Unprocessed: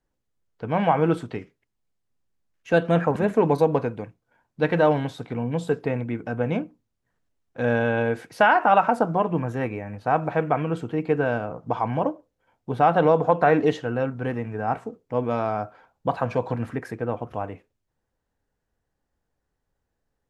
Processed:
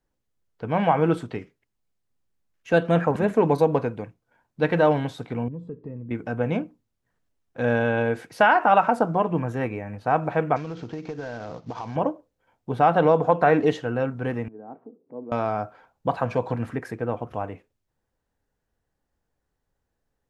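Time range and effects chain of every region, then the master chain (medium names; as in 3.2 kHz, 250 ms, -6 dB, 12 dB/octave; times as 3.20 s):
5.48–6.11 s: boxcar filter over 59 samples + compression 2:1, threshold -37 dBFS
10.56–11.96 s: CVSD coder 32 kbps + compression 16:1, threshold -28 dBFS
14.48–15.32 s: upward compressor, threshold -28 dBFS + ladder band-pass 340 Hz, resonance 35%
whole clip: none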